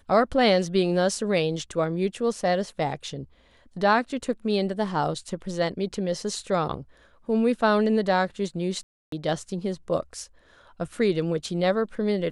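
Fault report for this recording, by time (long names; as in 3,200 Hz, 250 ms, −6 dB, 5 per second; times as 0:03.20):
0:08.83–0:09.12: drop-out 293 ms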